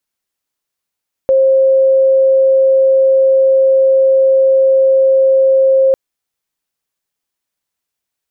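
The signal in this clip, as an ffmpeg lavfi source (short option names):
-f lavfi -i "aevalsrc='0.473*sin(2*PI*533*t)':d=4.65:s=44100"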